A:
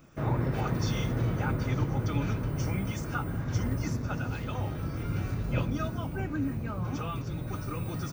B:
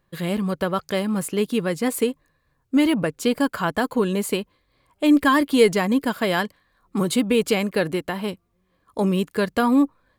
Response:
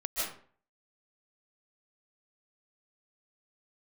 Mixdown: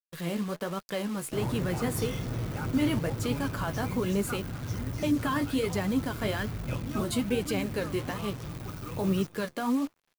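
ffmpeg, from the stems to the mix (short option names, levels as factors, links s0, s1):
-filter_complex "[0:a]adelay=1150,volume=0.596,asplit=2[s0][s1];[s1]volume=0.2[s2];[1:a]highpass=f=120:w=0.5412,highpass=f=120:w=1.3066,alimiter=limit=0.211:level=0:latency=1:release=28,flanger=delay=4.8:depth=9.3:regen=44:speed=1.2:shape=sinusoidal,volume=0.668[s3];[s2]aecho=0:1:248|496|744|992:1|0.23|0.0529|0.0122[s4];[s0][s3][s4]amix=inputs=3:normalize=0,acrusher=bits=8:dc=4:mix=0:aa=0.000001"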